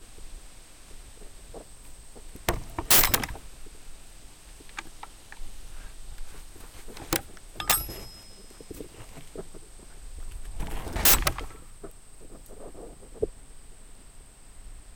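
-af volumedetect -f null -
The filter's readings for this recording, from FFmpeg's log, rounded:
mean_volume: -32.2 dB
max_volume: -11.2 dB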